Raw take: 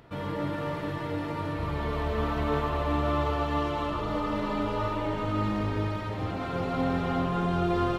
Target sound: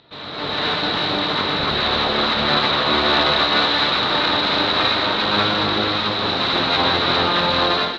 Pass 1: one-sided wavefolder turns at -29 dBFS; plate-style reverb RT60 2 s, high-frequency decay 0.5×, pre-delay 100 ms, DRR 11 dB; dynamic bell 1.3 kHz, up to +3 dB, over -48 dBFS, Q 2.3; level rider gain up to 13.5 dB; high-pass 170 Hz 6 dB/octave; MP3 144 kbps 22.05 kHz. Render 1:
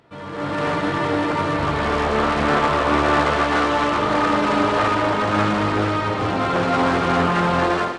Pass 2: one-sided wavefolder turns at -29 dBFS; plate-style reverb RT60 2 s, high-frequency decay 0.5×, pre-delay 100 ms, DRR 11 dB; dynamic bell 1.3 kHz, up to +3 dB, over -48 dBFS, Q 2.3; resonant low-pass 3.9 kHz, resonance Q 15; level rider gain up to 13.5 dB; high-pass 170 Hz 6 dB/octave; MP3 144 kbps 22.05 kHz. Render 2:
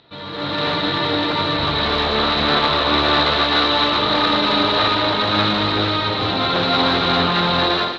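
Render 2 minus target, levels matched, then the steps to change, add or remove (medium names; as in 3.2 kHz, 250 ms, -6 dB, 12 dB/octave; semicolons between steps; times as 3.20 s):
one-sided wavefolder: distortion -12 dB
change: one-sided wavefolder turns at -38.5 dBFS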